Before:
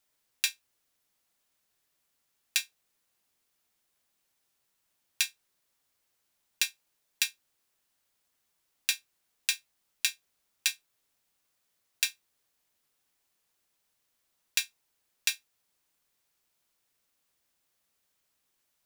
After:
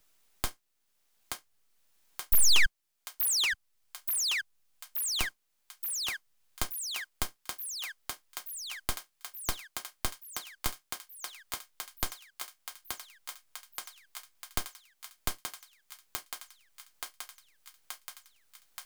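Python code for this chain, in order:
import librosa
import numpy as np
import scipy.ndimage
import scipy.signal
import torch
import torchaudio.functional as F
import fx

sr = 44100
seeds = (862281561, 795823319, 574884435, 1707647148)

y = fx.spec_paint(x, sr, seeds[0], shape='fall', start_s=2.32, length_s=0.34, low_hz=740.0, high_hz=8700.0, level_db=-11.0)
y = np.abs(y)
y = fx.echo_thinned(y, sr, ms=877, feedback_pct=71, hz=550.0, wet_db=-5.5)
y = fx.band_squash(y, sr, depth_pct=40)
y = F.gain(torch.from_numpy(y), -1.5).numpy()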